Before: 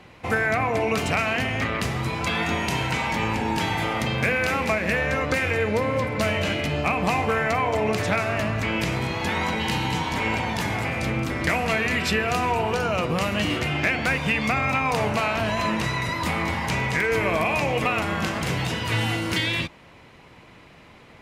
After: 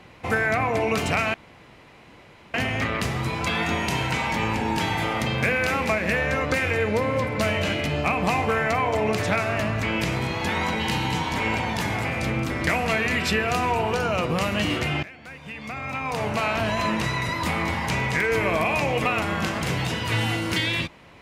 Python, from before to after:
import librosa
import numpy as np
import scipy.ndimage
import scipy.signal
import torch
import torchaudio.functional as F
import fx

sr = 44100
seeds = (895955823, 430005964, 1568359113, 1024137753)

y = fx.edit(x, sr, fx.insert_room_tone(at_s=1.34, length_s=1.2),
    fx.fade_in_from(start_s=13.83, length_s=1.47, curve='qua', floor_db=-20.5), tone=tone)